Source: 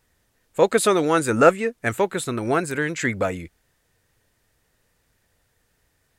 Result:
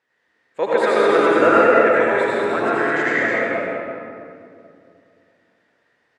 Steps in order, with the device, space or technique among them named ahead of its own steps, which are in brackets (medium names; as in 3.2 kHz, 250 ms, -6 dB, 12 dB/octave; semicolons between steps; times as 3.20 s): station announcement (band-pass 320–3600 Hz; peaking EQ 1.8 kHz +5.5 dB 0.41 oct; loudspeakers at several distances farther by 58 m -10 dB, 73 m -4 dB; reverberation RT60 2.4 s, pre-delay 71 ms, DRR -7 dB); trim -4.5 dB